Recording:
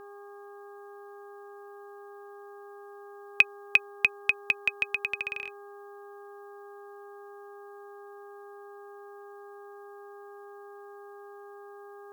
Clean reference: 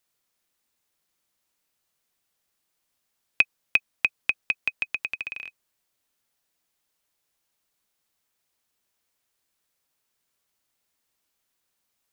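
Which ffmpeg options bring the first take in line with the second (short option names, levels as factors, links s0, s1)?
-af "bandreject=f=405.5:t=h:w=4,bandreject=f=811:t=h:w=4,bandreject=f=1216.5:t=h:w=4,bandreject=f=1622:t=h:w=4,bandreject=f=1100:w=30,agate=range=0.0891:threshold=0.0112"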